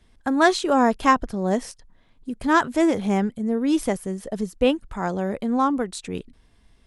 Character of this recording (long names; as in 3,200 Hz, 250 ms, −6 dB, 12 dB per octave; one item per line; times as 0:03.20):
background noise floor −58 dBFS
spectral slope −4.0 dB per octave